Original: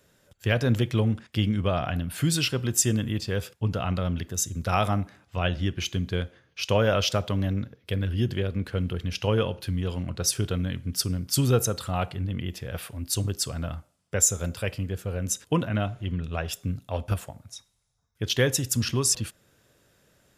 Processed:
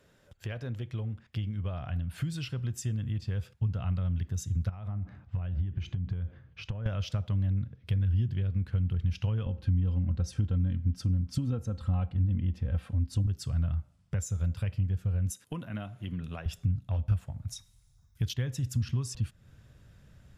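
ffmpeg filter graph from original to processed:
-filter_complex "[0:a]asettb=1/sr,asplit=3[a][b][c];[a]atrim=end=4.694[d];[b]atrim=start=4.69:end=6.86,asetpts=PTS-STARTPTS,afade=t=in:d=0.004:c=qsin,afade=t=out:st=2.166:d=0.004:c=qsin,lowpass=f=1.4k:p=1,acompressor=threshold=-34dB:ratio=20:attack=3.2:release=140:knee=1:detection=peak[e];[c]atrim=start=6.856[f];[d][e]acrossfade=d=0.004:c1=hsin:c2=qsin[g];[g][f]acrossfade=d=0.004:c1=qsin:c2=hsin,asettb=1/sr,asplit=3[h][i][j];[h]atrim=end=9.464[k];[i]atrim=start=9.46:end=13.27,asetpts=PTS-STARTPTS,afade=t=in:d=0.004:c=qsin,afade=t=out:st=3.806:d=0.004:c=qsin,lowpass=10k,tiltshelf=f=1.2k:g=5,aecho=1:1:3.8:0.61,atrim=end_sample=168021[l];[j]atrim=start=13.266[m];[k][l]acrossfade=d=0.004:c1=hsin:c2=qsin[n];[n][m]acrossfade=d=0.004:c1=qsin:c2=hsin,asettb=1/sr,asplit=3[o][p][q];[o]atrim=end=15.304[r];[p]atrim=start=15.3:end=16.46,asetpts=PTS-STARTPTS,afade=t=in:d=0.004:c=qsin,afade=t=out:st=1.156:d=0.004:c=qsin,highpass=240,equalizer=f=11k:t=o:w=0.7:g=14.5[s];[q]atrim=start=16.456[t];[r][s]acrossfade=d=0.004:c1=hsin:c2=qsin[u];[u][t]acrossfade=d=0.004:c1=qsin:c2=hsin,asettb=1/sr,asplit=3[v][w][x];[v]atrim=end=17.484[y];[w]atrim=start=17.48:end=18.34,asetpts=PTS-STARTPTS,afade=t=in:d=0.004:c=qsin,afade=t=out:st=0.856:d=0.004:c=qsin,aemphasis=mode=production:type=75kf,asoftclip=type=hard:threshold=-6dB[z];[x]atrim=start=18.336[aa];[y][z]acrossfade=d=0.004:c1=hsin:c2=qsin[ab];[ab][aa]acrossfade=d=0.004:c1=qsin:c2=hsin,highshelf=f=6.1k:g=-11.5,acompressor=threshold=-41dB:ratio=3,asubboost=boost=7.5:cutoff=140"

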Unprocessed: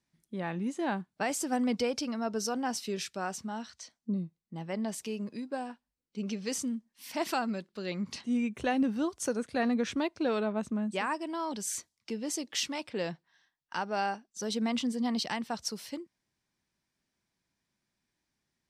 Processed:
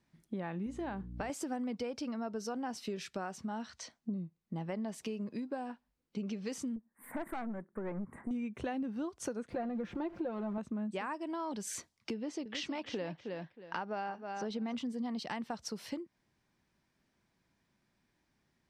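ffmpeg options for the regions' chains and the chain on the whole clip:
-filter_complex "[0:a]asettb=1/sr,asplit=3[a][b][c];[a]atrim=end=0.664[d];[b]atrim=start=0.66:end=1.3,asetpts=PTS-STARTPTS,afade=t=in:d=0.004:c=qsin,afade=t=out:st=0.636:d=0.004:c=qsin,bandreject=f=60:t=h:w=6,bandreject=f=120:t=h:w=6,bandreject=f=180:t=h:w=6,bandreject=f=240:t=h:w=6,bandreject=f=300:t=h:w=6,bandreject=f=360:t=h:w=6,bandreject=f=420:t=h:w=6,bandreject=f=480:t=h:w=6,acompressor=threshold=-36dB:ratio=2:attack=3.2:release=140:knee=1:detection=peak,aeval=exprs='val(0)+0.00355*(sin(2*PI*60*n/s)+sin(2*PI*2*60*n/s)/2+sin(2*PI*3*60*n/s)/3+sin(2*PI*4*60*n/s)/4+sin(2*PI*5*60*n/s)/5)':c=same[e];[c]atrim=start=1.296[f];[d][e]acrossfade=d=0.004:c1=hsin:c2=qsin[g];[g][f]acrossfade=d=0.004:c1=qsin:c2=hsin,asettb=1/sr,asplit=3[h][i][j];[h]atrim=end=6.764[k];[i]atrim=start=6.76:end=8.31,asetpts=PTS-STARTPTS,afade=t=in:d=0.004:c=qsin,afade=t=out:st=1.546:d=0.004:c=qsin,asuperstop=centerf=4200:order=12:qfactor=0.66,aeval=exprs='(tanh(39.8*val(0)+0.55)-tanh(0.55))/39.8':c=same[l];[j]atrim=start=8.306[m];[k][l]acrossfade=d=0.004:c1=hsin:c2=qsin[n];[n][m]acrossfade=d=0.004:c1=qsin:c2=hsin,asettb=1/sr,asplit=3[o][p][q];[o]atrim=end=9.504[r];[p]atrim=start=9.5:end=10.58,asetpts=PTS-STARTPTS,afade=t=in:d=0.004:c=qsin,afade=t=out:st=1.076:d=0.004:c=qsin,aeval=exprs='val(0)+0.5*0.0106*sgn(val(0))':c=same,lowpass=f=1k:p=1,aecho=1:1:5.7:0.66,atrim=end_sample=47628[s];[q]atrim=start=10.576[t];[r][s]acrossfade=d=0.004:c1=hsin:c2=qsin[u];[u][t]acrossfade=d=0.004:c1=qsin:c2=hsin,asettb=1/sr,asplit=3[v][w][x];[v]atrim=end=12.144[y];[w]atrim=start=12.14:end=14.75,asetpts=PTS-STARTPTS,afade=t=in:d=0.004:c=qsin,afade=t=out:st=2.606:d=0.004:c=qsin,lowpass=4.7k,aecho=1:1:315|630:0.282|0.0451,atrim=end_sample=115101[z];[x]atrim=start=14.746[aa];[y][z]acrossfade=d=0.004:c1=hsin:c2=qsin[ab];[ab][aa]acrossfade=d=0.004:c1=qsin:c2=hsin,highshelf=f=3.5k:g=-11,acompressor=threshold=-45dB:ratio=5,volume=8dB"

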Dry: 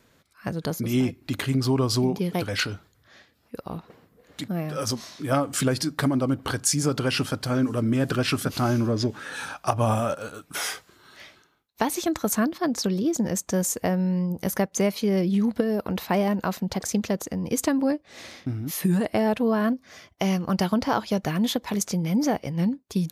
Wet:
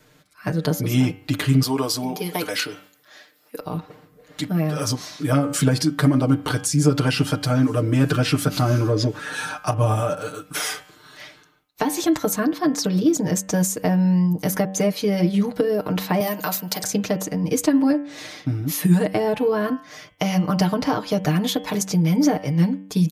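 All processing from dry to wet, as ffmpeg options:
-filter_complex "[0:a]asettb=1/sr,asplit=3[a][b][c];[a]atrim=end=1.624[d];[b]atrim=start=1.62:end=3.6,asetpts=PTS-STARTPTS,afade=t=in:d=0.004:c=qsin,afade=t=out:st=1.976:d=0.004:c=qsin,highpass=320,highshelf=f=9.7k:g=11.5[e];[c]atrim=start=3.596[f];[d][e]acrossfade=d=0.004:c1=hsin:c2=qsin[g];[g][f]acrossfade=d=0.004:c1=qsin:c2=hsin,asettb=1/sr,asplit=3[h][i][j];[h]atrim=end=16.204[k];[i]atrim=start=16.2:end=16.84,asetpts=PTS-STARTPTS,afade=t=in:d=0.004:c=qsin,afade=t=out:st=0.636:d=0.004:c=qsin,aemphasis=mode=production:type=riaa,bandreject=f=125.4:t=h:w=4,bandreject=f=250.8:t=h:w=4,bandreject=f=376.2:t=h:w=4,bandreject=f=501.6:t=h:w=4,bandreject=f=627:t=h:w=4[l];[j]atrim=start=16.836[m];[k][l]acrossfade=d=0.004:c1=hsin:c2=qsin[n];[n][m]acrossfade=d=0.004:c1=qsin:c2=hsin,aecho=1:1:6.6:0.95,bandreject=f=95.78:t=h:w=4,bandreject=f=191.56:t=h:w=4,bandreject=f=287.34:t=h:w=4,bandreject=f=383.12:t=h:w=4,bandreject=f=478.9:t=h:w=4,bandreject=f=574.68:t=h:w=4,bandreject=f=670.46:t=h:w=4,bandreject=f=766.24:t=h:w=4,bandreject=f=862.02:t=h:w=4,bandreject=f=957.8:t=h:w=4,bandreject=f=1.05358k:t=h:w=4,bandreject=f=1.14936k:t=h:w=4,bandreject=f=1.24514k:t=h:w=4,bandreject=f=1.34092k:t=h:w=4,bandreject=f=1.4367k:t=h:w=4,bandreject=f=1.53248k:t=h:w=4,bandreject=f=1.62826k:t=h:w=4,bandreject=f=1.72404k:t=h:w=4,bandreject=f=1.81982k:t=h:w=4,bandreject=f=1.9156k:t=h:w=4,bandreject=f=2.01138k:t=h:w=4,bandreject=f=2.10716k:t=h:w=4,bandreject=f=2.20294k:t=h:w=4,bandreject=f=2.29872k:t=h:w=4,bandreject=f=2.3945k:t=h:w=4,bandreject=f=2.49028k:t=h:w=4,bandreject=f=2.58606k:t=h:w=4,bandreject=f=2.68184k:t=h:w=4,bandreject=f=2.77762k:t=h:w=4,bandreject=f=2.8734k:t=h:w=4,bandreject=f=2.96918k:t=h:w=4,bandreject=f=3.06496k:t=h:w=4,bandreject=f=3.16074k:t=h:w=4,bandreject=f=3.25652k:t=h:w=4,bandreject=f=3.3523k:t=h:w=4,acrossover=split=410[o][p];[p]acompressor=threshold=-25dB:ratio=6[q];[o][q]amix=inputs=2:normalize=0,volume=3dB"

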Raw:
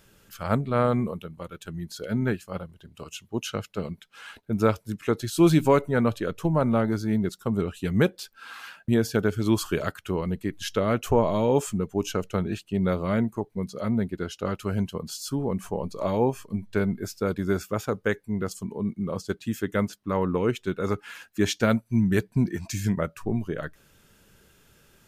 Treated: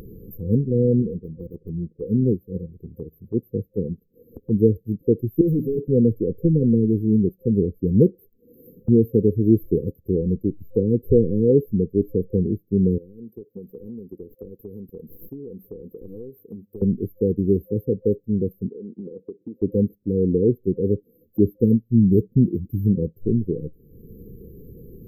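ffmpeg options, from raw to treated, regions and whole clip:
-filter_complex "[0:a]asettb=1/sr,asplit=3[a][b][c];[a]atrim=end=1.024[d];[b]atrim=start=1.02:end=2.09,asetpts=PTS-STARTPTS,afade=t=in:d=0.004:c=qsin,afade=t=out:st=1.066:d=0.004:c=qsin,lowpass=f=1.3k:t=q:w=14,asoftclip=type=hard:threshold=-28.5dB[e];[c]atrim=start=2.086[f];[d][e]acrossfade=d=0.004:c1=hsin:c2=qsin[g];[g][f]acrossfade=d=0.004:c1=qsin:c2=hsin,asettb=1/sr,asplit=3[h][i][j];[h]atrim=end=5.414[k];[i]atrim=start=5.41:end=5.88,asetpts=PTS-STARTPTS,afade=t=in:d=0.004:c=qsin,afade=t=out:st=0.466:d=0.004:c=qsin,highpass=f=130:w=0.5412,highpass=f=130:w=1.3066,asoftclip=type=hard:threshold=-24dB[l];[j]atrim=start=5.876[m];[k][l]acrossfade=d=0.004:c1=hsin:c2=qsin[n];[n][m]acrossfade=d=0.004:c1=qsin:c2=hsin,asettb=1/sr,asplit=3[o][p][q];[o]atrim=end=12.984[r];[p]atrim=start=12.98:end=16.82,asetpts=PTS-STARTPTS,afade=t=in:d=0.004:c=qsin,afade=t=out:st=3.836:d=0.004:c=qsin,highpass=f=1.4k:p=1,aeval=exprs='clip(val(0),-1,0.0112)':c=same,acompressor=threshold=-43dB:ratio=2.5:attack=3.2:release=140:knee=1:detection=peak[s];[q]atrim=start=16.816[t];[r][s]acrossfade=d=0.004:c1=hsin:c2=qsin[u];[u][t]acrossfade=d=0.004:c1=qsin:c2=hsin,asettb=1/sr,asplit=3[v][w][x];[v]atrim=end=18.684[y];[w]atrim=start=18.68:end=19.62,asetpts=PTS-STARTPTS,afade=t=in:d=0.004:c=qsin,afade=t=out:st=0.936:d=0.004:c=qsin,highpass=400,lowpass=2.5k,acompressor=threshold=-38dB:ratio=6:attack=3.2:release=140:knee=1:detection=peak[z];[x]atrim=start=19.616[aa];[y][z]acrossfade=d=0.004:c1=hsin:c2=qsin[ab];[ab][aa]acrossfade=d=0.004:c1=qsin:c2=hsin,afftfilt=real='re*(1-between(b*sr/4096,520,12000))':imag='im*(1-between(b*sr/4096,520,12000))':win_size=4096:overlap=0.75,highshelf=f=7.6k:g=-11.5,acompressor=mode=upward:threshold=-35dB:ratio=2.5,volume=6.5dB"

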